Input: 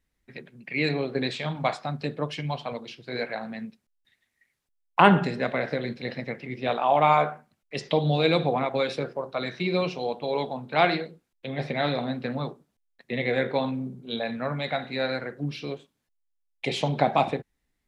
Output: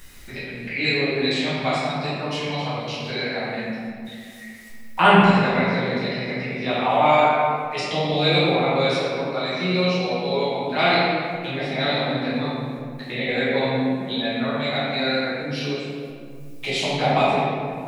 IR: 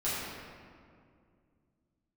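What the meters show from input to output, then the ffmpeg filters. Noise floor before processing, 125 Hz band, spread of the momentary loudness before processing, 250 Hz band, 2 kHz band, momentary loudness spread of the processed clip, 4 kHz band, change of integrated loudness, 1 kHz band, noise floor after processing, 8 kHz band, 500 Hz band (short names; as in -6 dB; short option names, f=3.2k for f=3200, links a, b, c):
-78 dBFS, +4.0 dB, 14 LU, +6.0 dB, +7.0 dB, 15 LU, +9.0 dB, +5.0 dB, +4.5 dB, -38 dBFS, n/a, +4.5 dB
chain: -filter_complex "[0:a]highshelf=f=2.3k:g=10.5,acompressor=mode=upward:threshold=-24dB:ratio=2.5[a];[1:a]atrim=start_sample=2205[b];[a][b]afir=irnorm=-1:irlink=0,volume=-5.5dB"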